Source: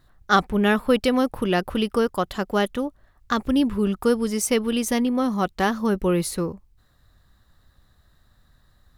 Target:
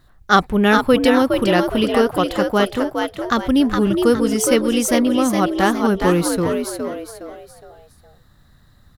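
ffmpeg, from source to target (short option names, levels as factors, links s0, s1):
-filter_complex "[0:a]asplit=5[s0][s1][s2][s3][s4];[s1]adelay=414,afreqshift=75,volume=0.562[s5];[s2]adelay=828,afreqshift=150,volume=0.202[s6];[s3]adelay=1242,afreqshift=225,volume=0.0733[s7];[s4]adelay=1656,afreqshift=300,volume=0.0263[s8];[s0][s5][s6][s7][s8]amix=inputs=5:normalize=0,volume=1.68"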